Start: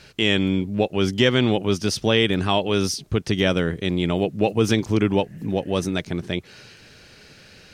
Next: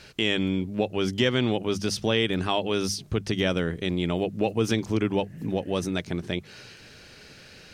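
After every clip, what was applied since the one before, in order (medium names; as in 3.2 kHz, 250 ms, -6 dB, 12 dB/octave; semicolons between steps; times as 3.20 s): hum notches 50/100/150/200 Hz; in parallel at +2 dB: compression, threshold -27 dBFS, peak gain reduction 13.5 dB; on the sum: trim -7.5 dB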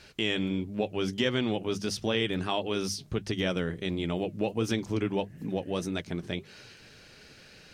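flange 1.5 Hz, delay 2.4 ms, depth 5.3 ms, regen -69%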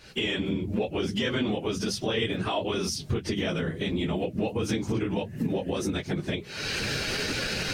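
phase randomisation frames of 50 ms; recorder AGC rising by 61 dB/s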